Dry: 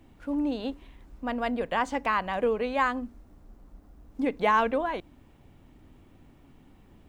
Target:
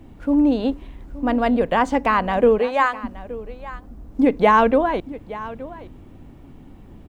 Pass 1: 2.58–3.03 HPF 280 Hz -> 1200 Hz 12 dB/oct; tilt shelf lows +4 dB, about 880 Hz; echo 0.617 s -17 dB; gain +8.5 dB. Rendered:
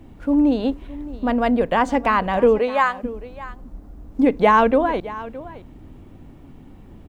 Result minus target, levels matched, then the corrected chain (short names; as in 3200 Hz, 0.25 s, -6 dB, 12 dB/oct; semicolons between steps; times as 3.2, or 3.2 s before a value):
echo 0.255 s early
2.58–3.03 HPF 280 Hz -> 1200 Hz 12 dB/oct; tilt shelf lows +4 dB, about 880 Hz; echo 0.872 s -17 dB; gain +8.5 dB